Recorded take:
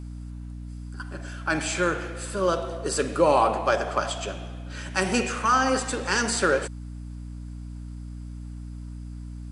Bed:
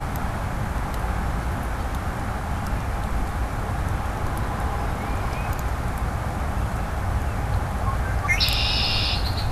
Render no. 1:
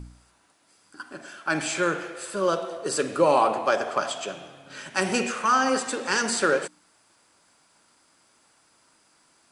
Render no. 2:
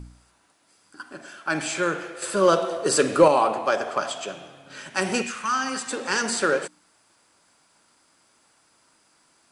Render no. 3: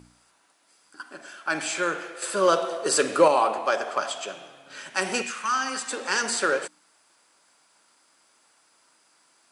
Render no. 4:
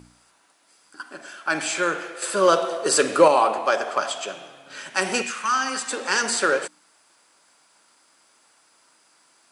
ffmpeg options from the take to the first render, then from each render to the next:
-af "bandreject=f=60:t=h:w=4,bandreject=f=120:t=h:w=4,bandreject=f=180:t=h:w=4,bandreject=f=240:t=h:w=4,bandreject=f=300:t=h:w=4"
-filter_complex "[0:a]asettb=1/sr,asplit=3[a][b][c];[a]atrim=end=2.224[d];[b]atrim=start=2.22:end=3.28,asetpts=PTS-STARTPTS,afade=t=in:d=0.004:c=qsin,afade=t=out:st=1.056:d=0.004:c=qsin,acontrast=54[e];[c]atrim=start=3.276[f];[d][e]acrossfade=d=0.004:c1=hsin:c2=qsin[g];[g][f]acrossfade=d=0.004:c1=qsin:c2=hsin,asettb=1/sr,asplit=3[h][i][j];[h]atrim=end=5.224[k];[i]atrim=start=5.22:end=5.91,asetpts=PTS-STARTPTS,afade=t=in:d=0.004:c=qsin,afade=t=out:st=0.686:d=0.004:c=qsin,equalizer=f=520:t=o:w=1.6:g=-12.5[l];[j]atrim=start=5.906[m];[k][l]acrossfade=d=0.004:c1=hsin:c2=qsin[n];[n][m]acrossfade=d=0.004:c1=qsin:c2=hsin"
-af "highpass=f=440:p=1"
-af "volume=3dB"

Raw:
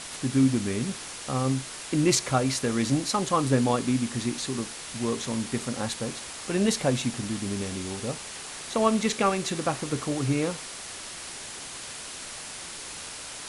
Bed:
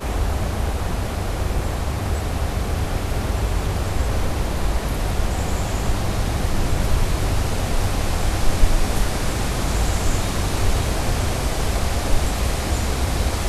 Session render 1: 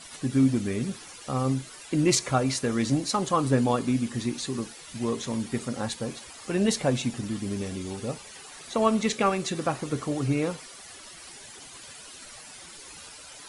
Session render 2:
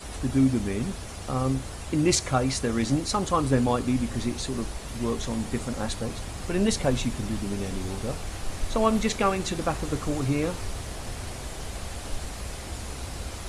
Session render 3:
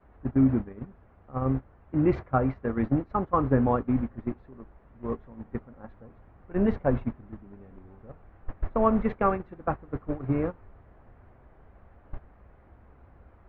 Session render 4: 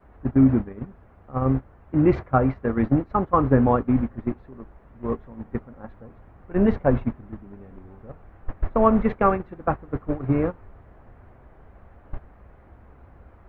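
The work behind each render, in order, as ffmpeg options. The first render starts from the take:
-af "afftdn=nr=12:nf=-40"
-filter_complex "[1:a]volume=-14.5dB[a];[0:a][a]amix=inputs=2:normalize=0"
-af "agate=range=-18dB:threshold=-25dB:ratio=16:detection=peak,lowpass=f=1.7k:w=0.5412,lowpass=f=1.7k:w=1.3066"
-af "volume=5dB"

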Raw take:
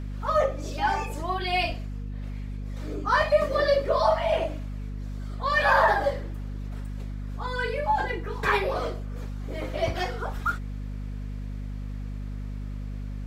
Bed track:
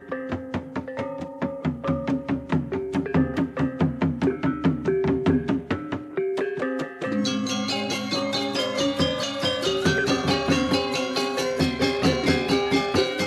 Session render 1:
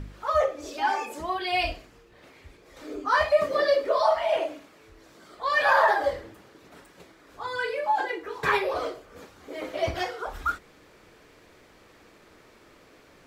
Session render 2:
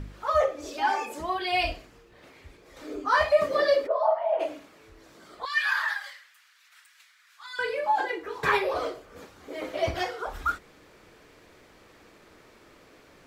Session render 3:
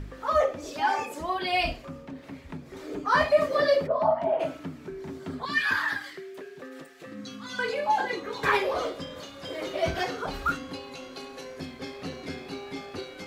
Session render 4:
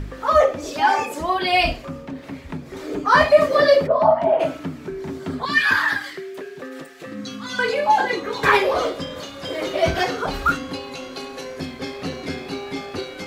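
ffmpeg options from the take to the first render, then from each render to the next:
-af "bandreject=f=50:t=h:w=4,bandreject=f=100:t=h:w=4,bandreject=f=150:t=h:w=4,bandreject=f=200:t=h:w=4,bandreject=f=250:t=h:w=4"
-filter_complex "[0:a]asplit=3[a][b][c];[a]afade=t=out:st=3.86:d=0.02[d];[b]bandpass=f=720:t=q:w=2,afade=t=in:st=3.86:d=0.02,afade=t=out:st=4.39:d=0.02[e];[c]afade=t=in:st=4.39:d=0.02[f];[d][e][f]amix=inputs=3:normalize=0,asettb=1/sr,asplit=3[g][h][i];[g]atrim=end=5.454[j];[h]atrim=start=5.45:end=7.59,asetpts=PTS-STARTPTS,afade=t=in:d=0.004:c=qsin,afade=t=out:st=2.136:d=0.004:c=qsin,highpass=f=1.5k:w=0.5412,highpass=f=1.5k:w=1.3066[k];[i]atrim=start=7.586[l];[j][k]acrossfade=d=0.004:c1=hsin:c2=qsin[m];[m][l]acrossfade=d=0.004:c1=qsin:c2=hsin"
-filter_complex "[1:a]volume=-16dB[a];[0:a][a]amix=inputs=2:normalize=0"
-af "volume=8dB"

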